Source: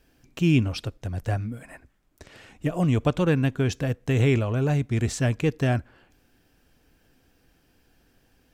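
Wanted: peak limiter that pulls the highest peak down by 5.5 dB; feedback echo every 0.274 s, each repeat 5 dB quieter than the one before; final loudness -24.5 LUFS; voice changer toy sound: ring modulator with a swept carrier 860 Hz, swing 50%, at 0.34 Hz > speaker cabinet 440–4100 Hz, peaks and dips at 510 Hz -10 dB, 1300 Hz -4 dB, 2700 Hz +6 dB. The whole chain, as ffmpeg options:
-af "alimiter=limit=-16dB:level=0:latency=1,aecho=1:1:274|548|822|1096|1370|1644|1918:0.562|0.315|0.176|0.0988|0.0553|0.031|0.0173,aeval=exprs='val(0)*sin(2*PI*860*n/s+860*0.5/0.34*sin(2*PI*0.34*n/s))':c=same,highpass=440,equalizer=f=510:t=q:w=4:g=-10,equalizer=f=1.3k:t=q:w=4:g=-4,equalizer=f=2.7k:t=q:w=4:g=6,lowpass=f=4.1k:w=0.5412,lowpass=f=4.1k:w=1.3066,volume=5.5dB"

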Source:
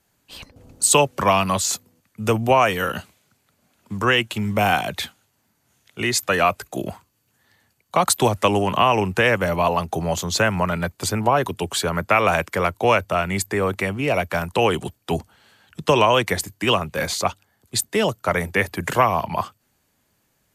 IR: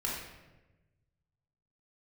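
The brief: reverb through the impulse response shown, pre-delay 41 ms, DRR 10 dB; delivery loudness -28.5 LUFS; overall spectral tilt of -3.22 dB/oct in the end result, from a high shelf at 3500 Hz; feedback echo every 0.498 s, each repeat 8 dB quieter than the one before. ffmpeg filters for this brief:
-filter_complex "[0:a]highshelf=f=3.5k:g=4,aecho=1:1:498|996|1494|1992|2490:0.398|0.159|0.0637|0.0255|0.0102,asplit=2[a][b];[1:a]atrim=start_sample=2205,adelay=41[c];[b][c]afir=irnorm=-1:irlink=0,volume=-15dB[d];[a][d]amix=inputs=2:normalize=0,volume=-9.5dB"

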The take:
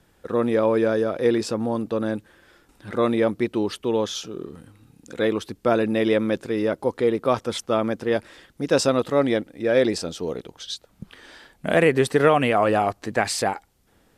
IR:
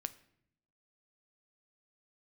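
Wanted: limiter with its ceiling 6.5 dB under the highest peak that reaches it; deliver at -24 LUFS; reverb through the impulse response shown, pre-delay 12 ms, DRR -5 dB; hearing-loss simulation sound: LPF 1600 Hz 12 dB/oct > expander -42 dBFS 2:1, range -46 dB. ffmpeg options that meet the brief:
-filter_complex "[0:a]alimiter=limit=-11dB:level=0:latency=1,asplit=2[a][b];[1:a]atrim=start_sample=2205,adelay=12[c];[b][c]afir=irnorm=-1:irlink=0,volume=7dB[d];[a][d]amix=inputs=2:normalize=0,lowpass=1.6k,agate=range=-46dB:threshold=-42dB:ratio=2,volume=-6dB"

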